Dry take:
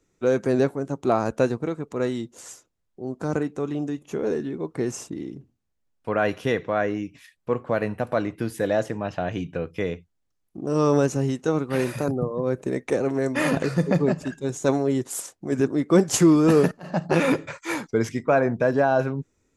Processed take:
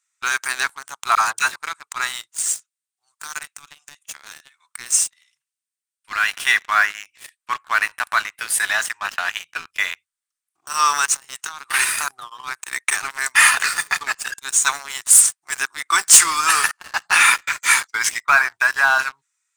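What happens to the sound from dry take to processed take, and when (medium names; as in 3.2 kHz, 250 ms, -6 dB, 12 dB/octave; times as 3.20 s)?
1.15–1.56 s: phase dispersion lows, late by 76 ms, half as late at 900 Hz
2.37–6.33 s: amplifier tone stack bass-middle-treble 10-0-10
11.05–11.74 s: compression 12:1, threshold -25 dBFS
whole clip: inverse Chebyshev high-pass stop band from 570 Hz, stop band 40 dB; peaking EQ 8.8 kHz +13.5 dB 0.32 oct; waveshaping leveller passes 3; trim +5 dB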